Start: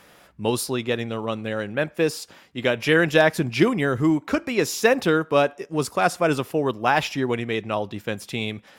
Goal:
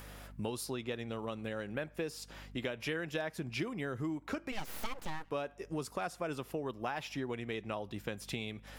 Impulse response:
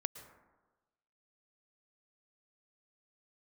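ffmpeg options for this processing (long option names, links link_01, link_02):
-filter_complex "[0:a]acrossover=split=7800[link_01][link_02];[link_02]acompressor=mode=upward:threshold=-55dB:ratio=2.5[link_03];[link_01][link_03]amix=inputs=2:normalize=0,asplit=3[link_04][link_05][link_06];[link_04]afade=type=out:start_time=4.51:duration=0.02[link_07];[link_05]aeval=exprs='abs(val(0))':channel_layout=same,afade=type=in:start_time=4.51:duration=0.02,afade=type=out:start_time=5.3:duration=0.02[link_08];[link_06]afade=type=in:start_time=5.3:duration=0.02[link_09];[link_07][link_08][link_09]amix=inputs=3:normalize=0,aeval=exprs='val(0)+0.00355*(sin(2*PI*50*n/s)+sin(2*PI*2*50*n/s)/2+sin(2*PI*3*50*n/s)/3+sin(2*PI*4*50*n/s)/4+sin(2*PI*5*50*n/s)/5)':channel_layout=same,acompressor=threshold=-35dB:ratio=5,volume=-1.5dB"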